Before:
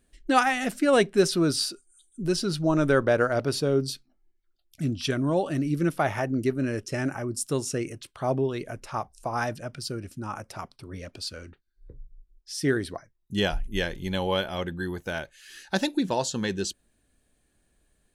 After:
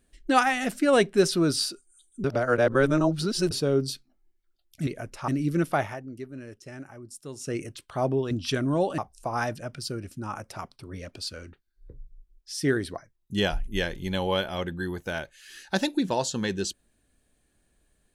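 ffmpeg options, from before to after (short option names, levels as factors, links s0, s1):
-filter_complex "[0:a]asplit=9[s0][s1][s2][s3][s4][s5][s6][s7][s8];[s0]atrim=end=2.242[s9];[s1]atrim=start=2.238:end=3.512,asetpts=PTS-STARTPTS,areverse[s10];[s2]atrim=start=3.508:end=4.872[s11];[s3]atrim=start=8.568:end=8.982[s12];[s4]atrim=start=5.538:end=6.34,asetpts=PTS-STARTPTS,afade=t=out:st=0.502:d=0.3:c=qua:silence=0.223872[s13];[s5]atrim=start=6.34:end=7.52,asetpts=PTS-STARTPTS,volume=0.224[s14];[s6]atrim=start=7.52:end=8.572,asetpts=PTS-STARTPTS,afade=t=in:d=0.3:c=qua:silence=0.223872[s15];[s7]atrim=start=4.868:end=5.542[s16];[s8]atrim=start=8.978[s17];[s9][s10]acrossfade=d=0.004:c1=hsin:c2=hsin[s18];[s18][s11]acrossfade=d=0.004:c1=hsin:c2=hsin[s19];[s19][s12]acrossfade=d=0.004:c1=hsin:c2=hsin[s20];[s13][s14][s15]concat=n=3:v=0:a=1[s21];[s20][s21]acrossfade=d=0.004:c1=hsin:c2=hsin[s22];[s22][s16]acrossfade=d=0.004:c1=hsin:c2=hsin[s23];[s23][s17]acrossfade=d=0.004:c1=hsin:c2=hsin"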